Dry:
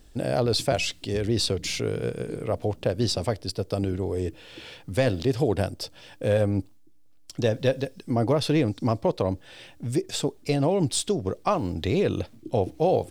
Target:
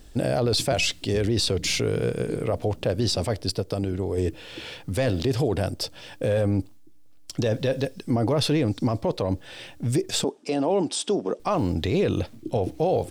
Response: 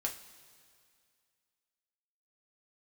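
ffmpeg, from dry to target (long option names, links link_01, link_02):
-filter_complex "[0:a]asettb=1/sr,asplit=3[link_01][link_02][link_03];[link_01]atrim=end=3.594[link_04];[link_02]atrim=start=3.59:end=4.18,asetpts=PTS-STARTPTS,afade=type=in:duration=0.004:curve=qsin,afade=type=out:start_time=0.586:duration=0.004:curve=qsin,acompressor=threshold=-29dB:ratio=2.5[link_05];[link_03]atrim=start=4.176[link_06];[link_04][link_05]acrossfade=duration=0.004:curve1=hsin:curve2=qsin[link_07];[link_07][link_06]acrossfade=duration=0.004:curve1=qsin:curve2=hsin,alimiter=limit=-19.5dB:level=0:latency=1:release=15,asettb=1/sr,asplit=3[link_08][link_09][link_10];[link_08]atrim=end=10.244[link_11];[link_09]atrim=start=10.24:end=11.4,asetpts=PTS-STARTPTS,afade=type=in:duration=0.004:curve=qsin,afade=type=out:start_time=1.156:duration=0.004:curve=qsin,highpass=frequency=210:width=0.5412,highpass=frequency=210:width=1.3066,equalizer=frequency=870:width_type=q:width=4:gain=4,equalizer=frequency=2100:width_type=q:width=4:gain=-5,equalizer=frequency=4200:width_type=q:width=4:gain=-6,equalizer=frequency=6900:width_type=q:width=4:gain=-4,lowpass=frequency=8500:width=0.5412,lowpass=frequency=8500:width=1.3066[link_12];[link_10]atrim=start=11.396[link_13];[link_11][link_12]acrossfade=duration=0.004:curve1=hsin:curve2=qsin[link_14];[link_14][link_13]acrossfade=duration=0.004:curve1=qsin:curve2=hsin,volume=5dB"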